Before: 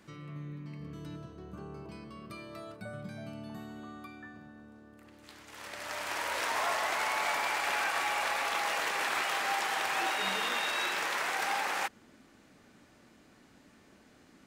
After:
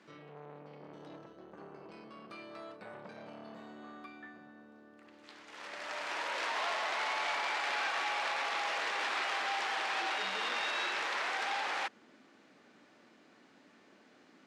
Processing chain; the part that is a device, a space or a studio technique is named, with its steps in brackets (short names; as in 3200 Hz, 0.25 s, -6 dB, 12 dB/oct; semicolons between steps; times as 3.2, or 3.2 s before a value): public-address speaker with an overloaded transformer (core saturation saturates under 3400 Hz; BPF 250–5100 Hz)